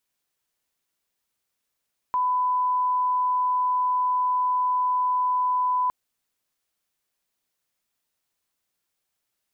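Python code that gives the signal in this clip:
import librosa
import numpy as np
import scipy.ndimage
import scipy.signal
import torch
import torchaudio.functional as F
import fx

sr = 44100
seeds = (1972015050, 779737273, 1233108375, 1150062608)

y = fx.lineup_tone(sr, length_s=3.76, level_db=-20.0)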